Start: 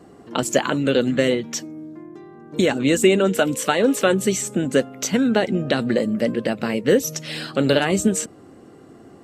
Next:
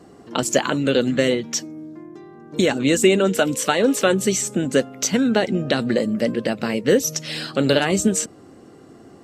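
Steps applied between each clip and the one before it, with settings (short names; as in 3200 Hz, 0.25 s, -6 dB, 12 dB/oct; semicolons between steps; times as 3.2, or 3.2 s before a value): bell 5400 Hz +4.5 dB 0.97 oct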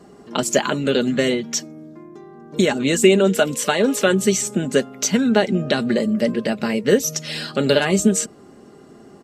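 comb 4.9 ms, depth 42%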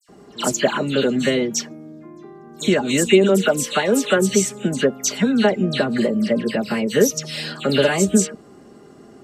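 dispersion lows, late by 88 ms, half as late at 2800 Hz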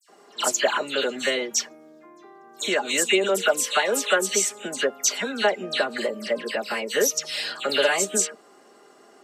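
HPF 610 Hz 12 dB/oct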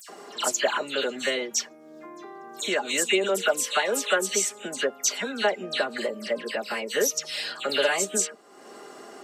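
upward compressor, threshold -30 dBFS; gain -2.5 dB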